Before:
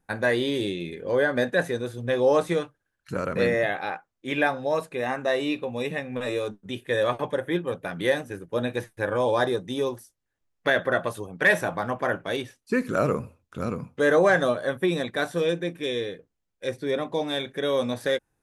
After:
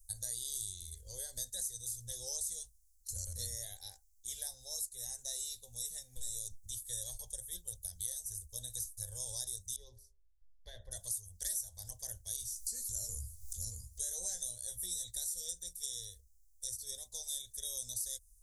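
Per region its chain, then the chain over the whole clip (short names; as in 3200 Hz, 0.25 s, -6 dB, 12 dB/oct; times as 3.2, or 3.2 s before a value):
9.76–10.91 air absorption 380 m + de-hum 68.02 Hz, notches 28
12.4–15.18 upward compressor, threshold -37 dBFS + doubler 17 ms -6.5 dB
whole clip: inverse Chebyshev band-stop 140–2700 Hz, stop band 50 dB; compressor 4:1, threshold -54 dBFS; gain +17.5 dB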